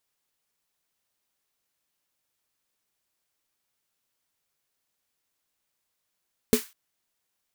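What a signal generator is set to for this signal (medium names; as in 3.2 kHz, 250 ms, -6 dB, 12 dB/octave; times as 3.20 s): snare drum length 0.20 s, tones 240 Hz, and 430 Hz, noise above 1.1 kHz, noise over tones -9.5 dB, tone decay 0.11 s, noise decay 0.30 s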